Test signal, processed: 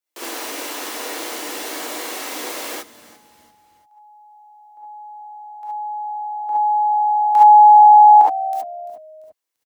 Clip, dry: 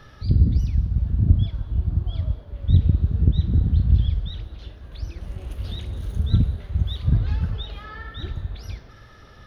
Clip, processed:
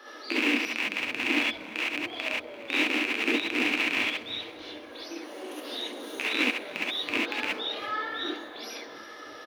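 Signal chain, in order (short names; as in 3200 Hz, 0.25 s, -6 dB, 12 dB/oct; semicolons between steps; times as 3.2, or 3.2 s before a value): rattling part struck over -16 dBFS, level -15 dBFS; steep high-pass 270 Hz 72 dB/oct; frequency-shifting echo 0.342 s, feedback 41%, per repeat -72 Hz, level -18 dB; non-linear reverb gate 90 ms rising, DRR -6.5 dB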